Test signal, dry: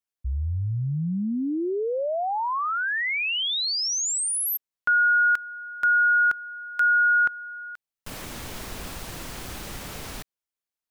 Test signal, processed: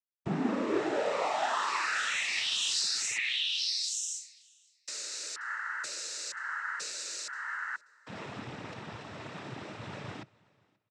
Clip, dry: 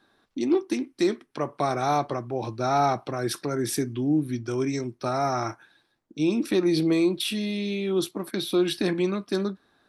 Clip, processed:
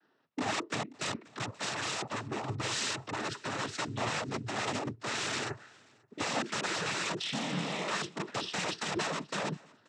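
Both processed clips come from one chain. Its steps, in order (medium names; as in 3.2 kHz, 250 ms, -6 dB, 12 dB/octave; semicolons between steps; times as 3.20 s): low-pass 3.4 kHz 12 dB/octave; integer overflow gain 24 dB; compression 2.5:1, threshold -40 dBFS; noise-vocoded speech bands 12; feedback delay 532 ms, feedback 36%, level -21.5 dB; three bands expanded up and down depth 40%; trim +4.5 dB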